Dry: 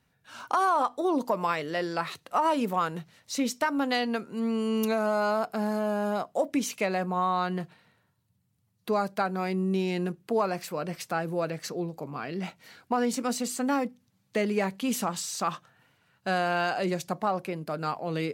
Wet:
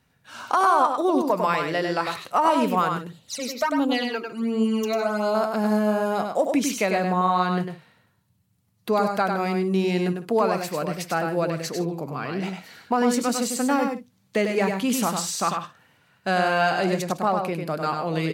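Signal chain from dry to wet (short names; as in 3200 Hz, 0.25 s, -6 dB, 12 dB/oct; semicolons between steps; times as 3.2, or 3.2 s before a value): 2.97–5.35 phaser stages 12, 1.4 Hz, lowest notch 160–2000 Hz; tapped delay 99/156 ms -5/-17.5 dB; gain +4.5 dB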